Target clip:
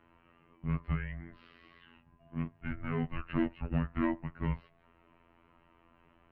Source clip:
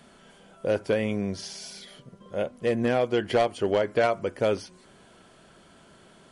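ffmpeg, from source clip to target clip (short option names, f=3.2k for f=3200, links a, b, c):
-af "afftfilt=real='hypot(re,im)*cos(PI*b)':imag='0':win_size=2048:overlap=0.75,highpass=f=350:t=q:w=0.5412,highpass=f=350:t=q:w=1.307,lowpass=f=2.9k:t=q:w=0.5176,lowpass=f=2.9k:t=q:w=0.7071,lowpass=f=2.9k:t=q:w=1.932,afreqshift=-360,volume=-4dB"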